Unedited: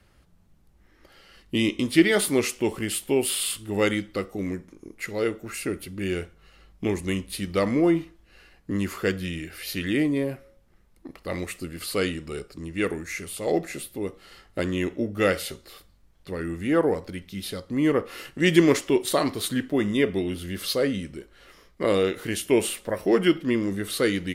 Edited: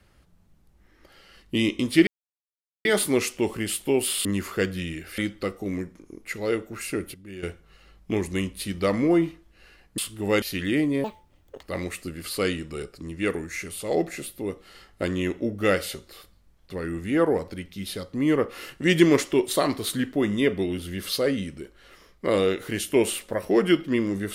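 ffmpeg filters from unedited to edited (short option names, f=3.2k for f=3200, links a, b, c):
-filter_complex "[0:a]asplit=10[a][b][c][d][e][f][g][h][i][j];[a]atrim=end=2.07,asetpts=PTS-STARTPTS,afade=t=out:st=2.066:d=0.004:c=hsin,apad=pad_dur=0.78[k];[b]atrim=start=2.07:end=3.472,asetpts=PTS-STARTPTS,afade=t=in:d=0.004:c=hsin[l];[c]atrim=start=8.708:end=9.642[m];[d]atrim=start=3.908:end=5.872[n];[e]atrim=start=5.868:end=6.162,asetpts=PTS-STARTPTS,volume=-11.5dB[o];[f]atrim=start=6.158:end=8.712[p];[g]atrim=start=3.468:end=3.912[q];[h]atrim=start=9.638:end=10.264[r];[i]atrim=start=10.26:end=11.19,asetpts=PTS-STARTPTS,asetrate=70119,aresample=44100,atrim=end_sample=25794,asetpts=PTS-STARTPTS[s];[j]atrim=start=11.186[t];[k][l]concat=n=2:v=0:a=1[u];[u][m]acrossfade=d=0.004:c1=hsin:c2=hsin[v];[v][n]acrossfade=d=0.004:c1=hsin:c2=hsin[w];[w][o]acrossfade=d=0.004:c1=hsin:c2=hsin[x];[x][p]acrossfade=d=0.004:c1=hsin:c2=hsin[y];[y][q]acrossfade=d=0.004:c1=hsin:c2=hsin[z];[z][r]acrossfade=d=0.004:c1=hsin:c2=hsin[aa];[aa][s]acrossfade=d=0.004:c1=hsin:c2=hsin[ab];[ab][t]acrossfade=d=0.004:c1=hsin:c2=hsin"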